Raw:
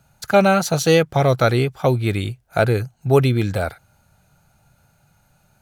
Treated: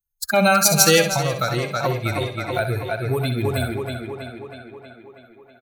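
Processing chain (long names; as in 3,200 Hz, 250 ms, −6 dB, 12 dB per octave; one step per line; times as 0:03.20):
spectral dynamics exaggerated over time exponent 2
high-shelf EQ 8,800 Hz +9 dB
brickwall limiter −11 dBFS, peak gain reduction 7.5 dB
tilt shelving filter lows −4.5 dB, about 1,400 Hz
tape delay 321 ms, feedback 67%, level −6 dB, low-pass 5,600 Hz
0:01.01–0:03.45: downward compressor, threshold −25 dBFS, peak gain reduction 7.5 dB
repeating echo 64 ms, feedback 25%, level −9 dB
level +6 dB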